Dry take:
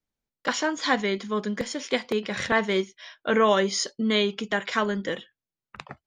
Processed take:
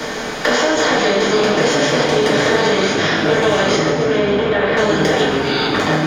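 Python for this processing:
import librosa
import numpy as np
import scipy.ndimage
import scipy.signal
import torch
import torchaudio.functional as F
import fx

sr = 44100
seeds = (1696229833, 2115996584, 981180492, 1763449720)

p1 = fx.bin_compress(x, sr, power=0.4)
p2 = fx.dynamic_eq(p1, sr, hz=460.0, q=0.9, threshold_db=-30.0, ratio=4.0, max_db=6)
p3 = fx.over_compress(p2, sr, threshold_db=-22.0, ratio=-0.5)
p4 = p2 + F.gain(torch.from_numpy(p3), -1.0).numpy()
p5 = np.clip(10.0 ** (4.5 / 20.0) * p4, -1.0, 1.0) / 10.0 ** (4.5 / 20.0)
p6 = fx.echo_pitch(p5, sr, ms=229, semitones=-6, count=3, db_per_echo=-6.0)
p7 = fx.air_absorb(p6, sr, metres=470.0, at=(3.75, 4.77))
p8 = p7 + fx.echo_split(p7, sr, split_hz=340.0, low_ms=280, high_ms=134, feedback_pct=52, wet_db=-11.0, dry=0)
p9 = fx.rev_double_slope(p8, sr, seeds[0], early_s=0.51, late_s=2.2, knee_db=-26, drr_db=-6.5)
p10 = fx.band_squash(p9, sr, depth_pct=70)
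y = F.gain(torch.from_numpy(p10), -9.0).numpy()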